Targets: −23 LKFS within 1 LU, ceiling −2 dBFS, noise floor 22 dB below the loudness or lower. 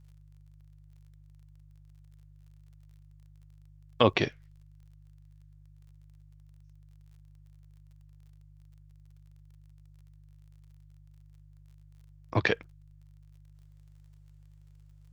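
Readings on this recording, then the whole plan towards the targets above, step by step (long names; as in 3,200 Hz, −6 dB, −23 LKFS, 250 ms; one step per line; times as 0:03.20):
crackle rate 34 per second; mains hum 50 Hz; hum harmonics up to 150 Hz; level of the hum −52 dBFS; integrated loudness −28.5 LKFS; sample peak −5.0 dBFS; target loudness −23.0 LKFS
→ click removal
hum removal 50 Hz, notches 3
level +5.5 dB
brickwall limiter −2 dBFS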